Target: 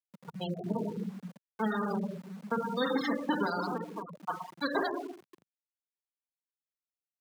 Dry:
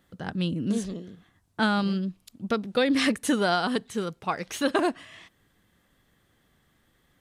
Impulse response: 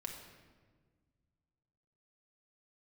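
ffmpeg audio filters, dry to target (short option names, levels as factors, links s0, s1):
-filter_complex "[0:a]acrossover=split=840[s0][s1];[s0]aeval=exprs='val(0)*(1-0.5/2+0.5/2*cos(2*PI*6.7*n/s))':c=same[s2];[s1]aeval=exprs='val(0)*(1-0.5/2-0.5/2*cos(2*PI*6.7*n/s))':c=same[s3];[s2][s3]amix=inputs=2:normalize=0,acontrast=46,aeval=exprs='0.447*(cos(1*acos(clip(val(0)/0.447,-1,1)))-cos(1*PI/2))+0.00282*(cos(2*acos(clip(val(0)/0.447,-1,1)))-cos(2*PI/2))+0.00501*(cos(6*acos(clip(val(0)/0.447,-1,1)))-cos(6*PI/2))+0.0891*(cos(7*acos(clip(val(0)/0.447,-1,1)))-cos(7*PI/2))+0.00501*(cos(8*acos(clip(val(0)/0.447,-1,1)))-cos(8*PI/2))':c=same,equalizer=f=250:t=o:w=0.67:g=-9,equalizer=f=630:t=o:w=0.67:g=-6,equalizer=f=2500:t=o:w=0.67:g=-8,acompressor=threshold=0.0282:ratio=2,asplit=2[s4][s5];[s5]adelay=89,lowpass=f=4000:p=1,volume=0.106,asplit=2[s6][s7];[s7]adelay=89,lowpass=f=4000:p=1,volume=0.26[s8];[s4][s6][s8]amix=inputs=3:normalize=0[s9];[1:a]atrim=start_sample=2205[s10];[s9][s10]afir=irnorm=-1:irlink=0,asettb=1/sr,asplit=3[s11][s12][s13];[s11]atrim=end=0.724[s14];[s12]atrim=start=0.72:end=3.17,asetpts=PTS-STARTPTS,afade=t=in:d=0.004:c=qsin,afade=t=out:st=2.446:d=0.004:c=qsin,adynamicequalizer=threshold=0.00447:dfrequency=260:dqfactor=1.2:tfrequency=260:tqfactor=1.2:attack=5:release=100:ratio=0.375:range=2:mode=boostabove:tftype=bell[s15];[s13]atrim=start=3.166[s16];[s14][s15]acrossfade=d=0.004:c1=hsin:c2=qsin[s17];[s17][s16]acrossfade=d=0.004:c1=qsin:c2=hsin,alimiter=limit=0.0631:level=0:latency=1:release=18,afftfilt=real='re*gte(hypot(re,im),0.0251)':imag='im*gte(hypot(re,im),0.0251)':win_size=1024:overlap=0.75,aeval=exprs='val(0)*gte(abs(val(0)),0.00178)':c=same,highpass=f=150:w=0.5412,highpass=f=150:w=1.3066,volume=2.11"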